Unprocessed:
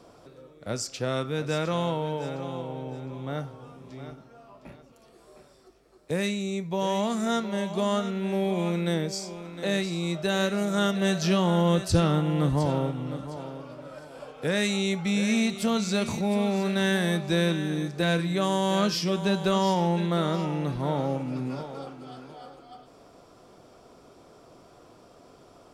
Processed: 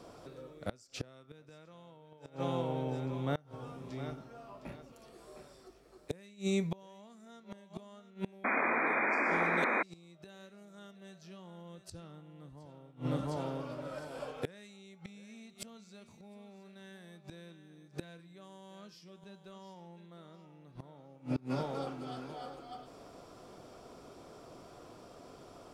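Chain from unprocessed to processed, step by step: flipped gate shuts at -22 dBFS, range -28 dB; painted sound noise, 8.44–9.83, 210–2500 Hz -31 dBFS

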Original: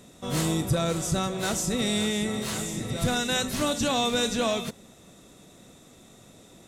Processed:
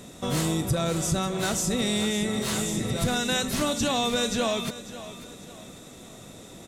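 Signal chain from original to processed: compressor 2:1, threshold -34 dBFS, peak gain reduction 8 dB; on a send: feedback echo 0.545 s, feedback 39%, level -15 dB; on the sum: gain +6.5 dB

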